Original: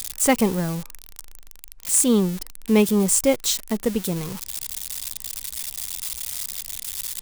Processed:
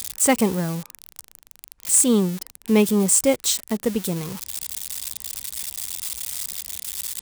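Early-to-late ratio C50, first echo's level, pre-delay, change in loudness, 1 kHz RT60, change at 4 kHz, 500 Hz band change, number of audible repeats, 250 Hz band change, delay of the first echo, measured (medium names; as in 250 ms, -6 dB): no reverb, no echo, no reverb, +1.0 dB, no reverb, 0.0 dB, 0.0 dB, no echo, 0.0 dB, no echo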